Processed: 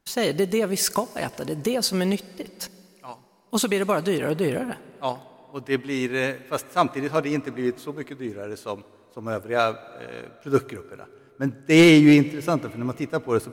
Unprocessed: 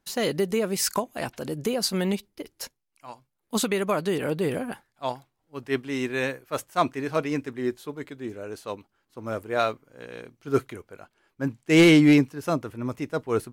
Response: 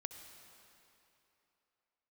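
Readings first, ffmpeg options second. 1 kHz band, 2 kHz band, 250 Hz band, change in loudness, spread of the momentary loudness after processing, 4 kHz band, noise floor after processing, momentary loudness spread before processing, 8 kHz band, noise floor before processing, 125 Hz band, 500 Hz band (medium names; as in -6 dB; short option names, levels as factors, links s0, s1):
+2.5 dB, +2.5 dB, +2.5 dB, +2.5 dB, 19 LU, +2.5 dB, -55 dBFS, 19 LU, +2.5 dB, -78 dBFS, +2.5 dB, +2.5 dB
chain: -filter_complex "[0:a]asplit=2[s0][s1];[1:a]atrim=start_sample=2205[s2];[s1][s2]afir=irnorm=-1:irlink=0,volume=0.501[s3];[s0][s3]amix=inputs=2:normalize=0"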